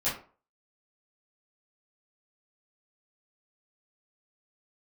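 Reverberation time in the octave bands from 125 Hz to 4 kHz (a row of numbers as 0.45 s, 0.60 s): 0.35 s, 0.40 s, 0.40 s, 0.40 s, 0.30 s, 0.25 s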